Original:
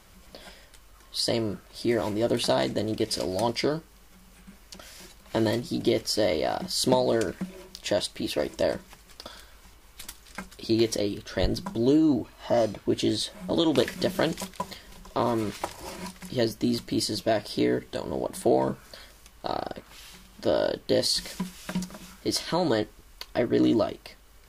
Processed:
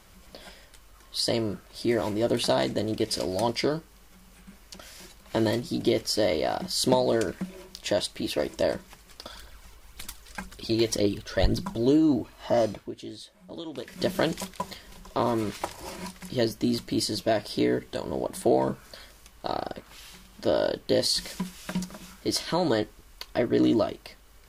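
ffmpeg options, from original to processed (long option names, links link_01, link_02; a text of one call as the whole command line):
ffmpeg -i in.wav -filter_complex "[0:a]asplit=3[link_01][link_02][link_03];[link_01]afade=type=out:start_time=9.28:duration=0.02[link_04];[link_02]aphaser=in_gain=1:out_gain=1:delay=2.3:decay=0.44:speed=1.9:type=triangular,afade=type=in:start_time=9.28:duration=0.02,afade=type=out:start_time=11.84:duration=0.02[link_05];[link_03]afade=type=in:start_time=11.84:duration=0.02[link_06];[link_04][link_05][link_06]amix=inputs=3:normalize=0,asplit=3[link_07][link_08][link_09];[link_07]atrim=end=12.92,asetpts=PTS-STARTPTS,afade=type=out:start_time=12.73:duration=0.19:silence=0.188365[link_10];[link_08]atrim=start=12.92:end=13.87,asetpts=PTS-STARTPTS,volume=-14.5dB[link_11];[link_09]atrim=start=13.87,asetpts=PTS-STARTPTS,afade=type=in:duration=0.19:silence=0.188365[link_12];[link_10][link_11][link_12]concat=n=3:v=0:a=1" out.wav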